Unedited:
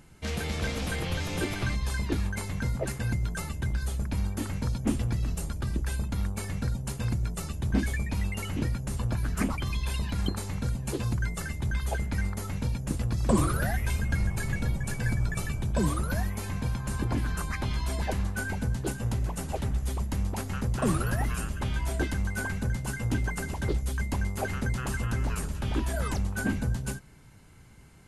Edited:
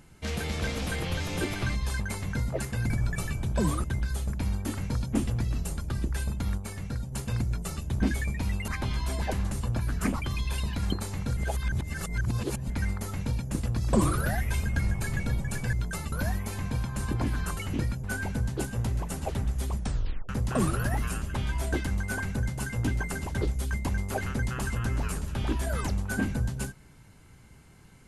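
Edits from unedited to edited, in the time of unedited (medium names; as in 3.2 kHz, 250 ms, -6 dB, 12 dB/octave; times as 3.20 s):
2.00–2.27 s: delete
3.17–3.56 s: swap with 15.09–16.03 s
6.30–6.84 s: gain -3.5 dB
8.40–8.87 s: swap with 17.48–18.31 s
10.73–12.06 s: reverse
20.04 s: tape stop 0.52 s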